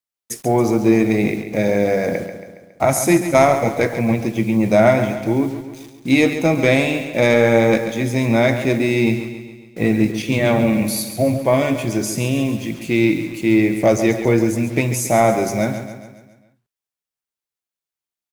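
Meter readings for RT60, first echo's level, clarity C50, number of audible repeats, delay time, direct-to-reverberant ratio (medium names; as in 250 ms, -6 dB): no reverb, -10.0 dB, no reverb, 5, 138 ms, no reverb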